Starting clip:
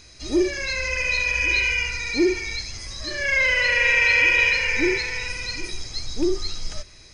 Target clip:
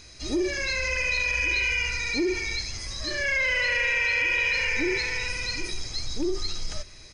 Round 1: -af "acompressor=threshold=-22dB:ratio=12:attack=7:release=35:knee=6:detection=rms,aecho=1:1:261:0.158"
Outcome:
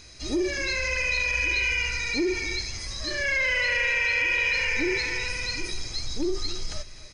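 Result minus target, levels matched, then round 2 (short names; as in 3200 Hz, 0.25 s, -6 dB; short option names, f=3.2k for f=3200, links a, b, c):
echo-to-direct +11.5 dB
-af "acompressor=threshold=-22dB:ratio=12:attack=7:release=35:knee=6:detection=rms,aecho=1:1:261:0.0422"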